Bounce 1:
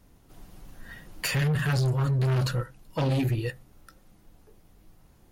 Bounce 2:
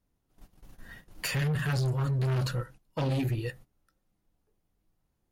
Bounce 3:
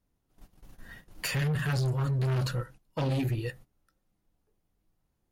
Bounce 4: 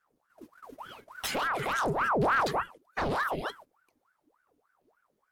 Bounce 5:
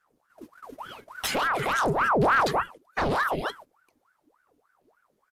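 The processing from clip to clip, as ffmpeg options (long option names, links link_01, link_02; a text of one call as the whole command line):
ffmpeg -i in.wav -af "agate=range=-16dB:threshold=-44dB:ratio=16:detection=peak,volume=-3.5dB" out.wav
ffmpeg -i in.wav -af anull out.wav
ffmpeg -i in.wav -af "aphaser=in_gain=1:out_gain=1:delay=4.5:decay=0.27:speed=0.41:type=sinusoidal,aeval=exprs='val(0)*sin(2*PI*890*n/s+890*0.7/3.4*sin(2*PI*3.4*n/s))':channel_layout=same,volume=2dB" out.wav
ffmpeg -i in.wav -af "aresample=32000,aresample=44100,volume=4.5dB" out.wav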